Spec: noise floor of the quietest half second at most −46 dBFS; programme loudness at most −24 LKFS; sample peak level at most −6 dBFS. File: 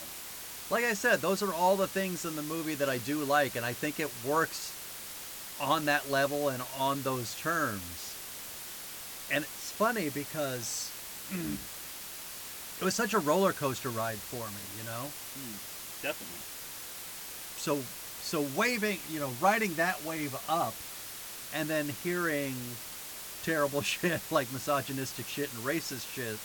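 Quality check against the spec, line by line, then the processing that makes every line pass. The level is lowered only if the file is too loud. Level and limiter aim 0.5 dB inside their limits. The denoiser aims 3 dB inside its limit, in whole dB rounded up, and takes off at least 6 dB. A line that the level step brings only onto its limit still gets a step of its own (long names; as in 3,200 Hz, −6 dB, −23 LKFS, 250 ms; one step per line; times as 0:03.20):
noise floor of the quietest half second −43 dBFS: out of spec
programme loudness −32.5 LKFS: in spec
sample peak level −14.0 dBFS: in spec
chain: broadband denoise 6 dB, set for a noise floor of −43 dBFS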